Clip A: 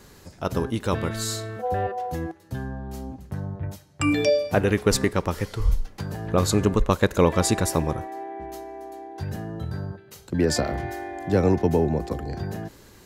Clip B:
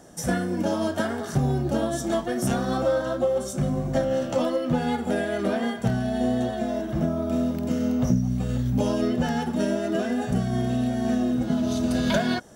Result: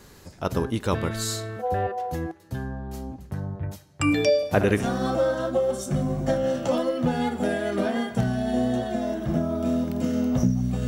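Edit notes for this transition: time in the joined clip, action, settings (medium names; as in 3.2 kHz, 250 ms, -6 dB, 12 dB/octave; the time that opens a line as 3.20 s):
clip A
4.36–4.88 s: flutter echo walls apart 11.6 m, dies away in 0.42 s
4.81 s: go over to clip B from 2.48 s, crossfade 0.14 s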